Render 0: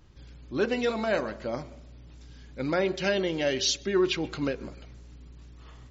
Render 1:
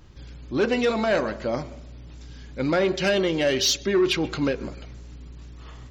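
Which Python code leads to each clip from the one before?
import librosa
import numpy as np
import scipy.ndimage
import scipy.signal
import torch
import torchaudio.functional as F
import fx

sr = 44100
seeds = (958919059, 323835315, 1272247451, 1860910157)

y = 10.0 ** (-20.5 / 20.0) * np.tanh(x / 10.0 ** (-20.5 / 20.0))
y = F.gain(torch.from_numpy(y), 6.5).numpy()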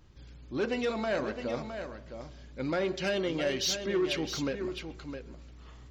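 y = x + 10.0 ** (-8.5 / 20.0) * np.pad(x, (int(662 * sr / 1000.0), 0))[:len(x)]
y = F.gain(torch.from_numpy(y), -8.5).numpy()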